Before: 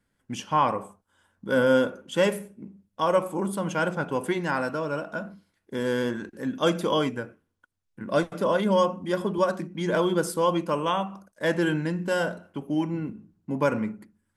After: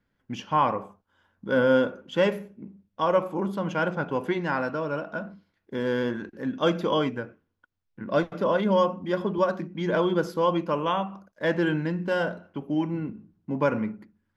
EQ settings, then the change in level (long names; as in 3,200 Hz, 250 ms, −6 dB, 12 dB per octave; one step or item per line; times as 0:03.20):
moving average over 5 samples
0.0 dB